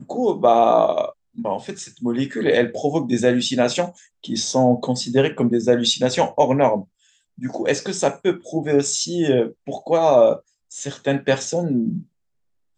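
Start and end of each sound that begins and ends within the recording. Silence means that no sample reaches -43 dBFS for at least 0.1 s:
1.36–4.06
4.24–6.84
7.38–9.52
9.67–10.4
10.71–12.03

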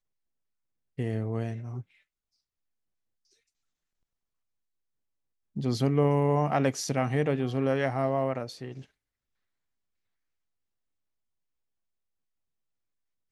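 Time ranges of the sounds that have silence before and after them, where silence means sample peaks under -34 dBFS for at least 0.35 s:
0.99–1.81
5.57–8.79

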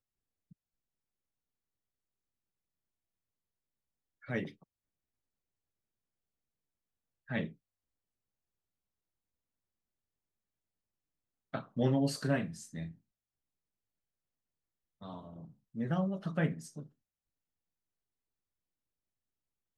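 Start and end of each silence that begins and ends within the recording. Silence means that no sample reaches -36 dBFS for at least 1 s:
4.47–7.31
7.47–11.54
12.86–15.05

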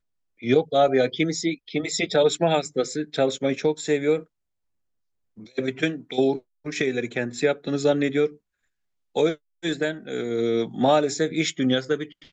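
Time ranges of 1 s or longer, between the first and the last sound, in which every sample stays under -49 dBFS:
4.24–5.37

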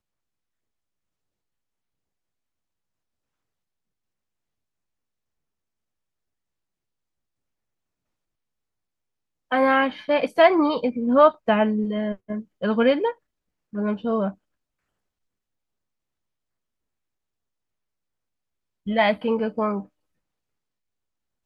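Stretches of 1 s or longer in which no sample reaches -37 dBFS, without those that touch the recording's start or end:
14.31–18.87

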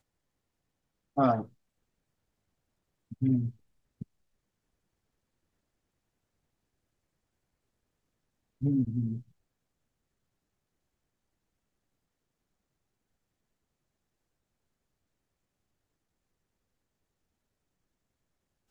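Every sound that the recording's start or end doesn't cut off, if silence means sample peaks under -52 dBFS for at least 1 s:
1.16–1.49
3.11–4.03
8.61–9.22

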